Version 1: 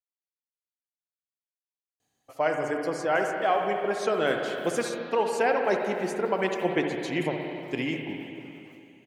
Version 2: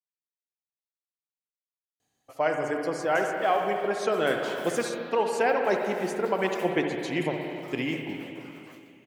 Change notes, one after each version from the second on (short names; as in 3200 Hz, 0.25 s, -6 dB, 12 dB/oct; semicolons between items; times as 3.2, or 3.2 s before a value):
background +10.0 dB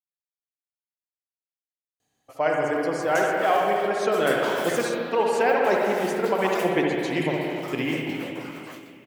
speech: send +6.0 dB; background +10.5 dB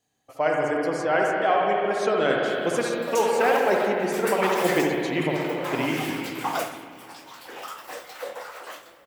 speech: entry -2.00 s; background +4.5 dB